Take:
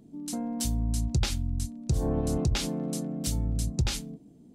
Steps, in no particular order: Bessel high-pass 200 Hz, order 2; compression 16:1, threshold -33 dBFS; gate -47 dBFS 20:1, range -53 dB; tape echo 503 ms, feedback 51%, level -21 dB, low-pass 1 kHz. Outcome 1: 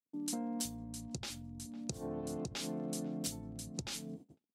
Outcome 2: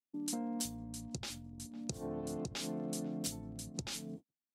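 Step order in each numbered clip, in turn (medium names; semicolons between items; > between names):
tape echo > gate > compression > Bessel high-pass; tape echo > compression > Bessel high-pass > gate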